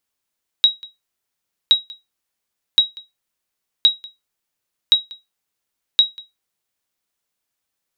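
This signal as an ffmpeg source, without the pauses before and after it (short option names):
-f lavfi -i "aevalsrc='0.668*(sin(2*PI*3830*mod(t,1.07))*exp(-6.91*mod(t,1.07)/0.19)+0.0668*sin(2*PI*3830*max(mod(t,1.07)-0.19,0))*exp(-6.91*max(mod(t,1.07)-0.19,0)/0.19))':d=6.42:s=44100"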